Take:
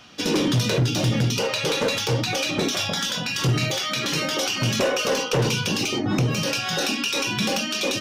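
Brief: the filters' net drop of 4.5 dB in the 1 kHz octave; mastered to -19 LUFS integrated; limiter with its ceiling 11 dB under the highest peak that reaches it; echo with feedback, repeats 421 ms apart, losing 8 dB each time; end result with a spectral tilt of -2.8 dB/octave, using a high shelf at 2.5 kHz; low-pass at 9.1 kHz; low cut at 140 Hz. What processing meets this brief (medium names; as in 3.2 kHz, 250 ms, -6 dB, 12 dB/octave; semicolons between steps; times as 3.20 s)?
high-pass 140 Hz; low-pass 9.1 kHz; peaking EQ 1 kHz -7 dB; treble shelf 2.5 kHz +4.5 dB; peak limiter -21.5 dBFS; feedback delay 421 ms, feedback 40%, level -8 dB; trim +8.5 dB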